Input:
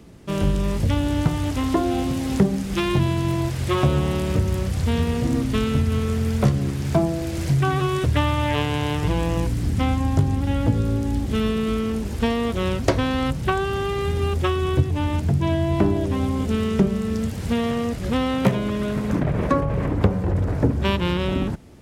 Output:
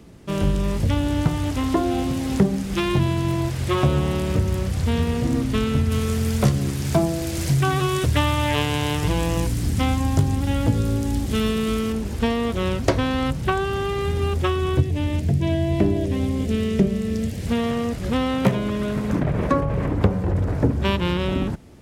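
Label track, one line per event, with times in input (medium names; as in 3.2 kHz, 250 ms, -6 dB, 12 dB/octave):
5.910000	11.930000	treble shelf 3.8 kHz +8.5 dB
14.810000	17.470000	high-order bell 1.1 kHz -8.5 dB 1.1 oct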